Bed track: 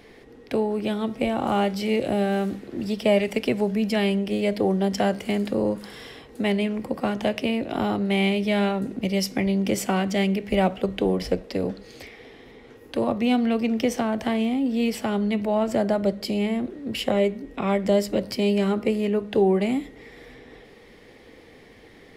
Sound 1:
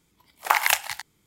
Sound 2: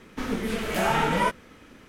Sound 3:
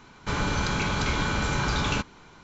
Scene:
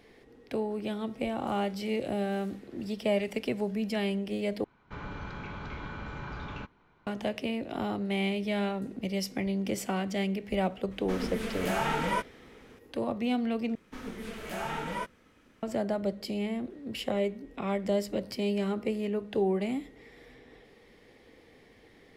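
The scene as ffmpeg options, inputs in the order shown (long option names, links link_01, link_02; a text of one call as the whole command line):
ffmpeg -i bed.wav -i cue0.wav -i cue1.wav -i cue2.wav -filter_complex "[2:a]asplit=2[link_01][link_02];[0:a]volume=-8dB[link_03];[3:a]lowpass=2400[link_04];[link_03]asplit=3[link_05][link_06][link_07];[link_05]atrim=end=4.644[link_08];[link_04]atrim=end=2.43,asetpts=PTS-STARTPTS,volume=-13dB[link_09];[link_06]atrim=start=7.066:end=13.754[link_10];[link_02]atrim=end=1.88,asetpts=PTS-STARTPTS,volume=-11.5dB[link_11];[link_07]atrim=start=15.626[link_12];[link_01]atrim=end=1.88,asetpts=PTS-STARTPTS,volume=-6dB,afade=type=in:duration=0.004:curve=hsin,afade=type=out:start_time=1.876:duration=0.004:curve=hsin,adelay=10910[link_13];[link_08][link_09]acrossfade=duration=0.004:curve1=hsin:curve2=hsin[link_14];[link_14][link_10]acrossfade=duration=0.004:curve1=hsin:curve2=hsin[link_15];[link_15][link_11]acrossfade=duration=0.004:curve1=hsin:curve2=hsin[link_16];[link_16][link_12]acrossfade=duration=0.004:curve1=hsin:curve2=hsin[link_17];[link_17][link_13]amix=inputs=2:normalize=0" out.wav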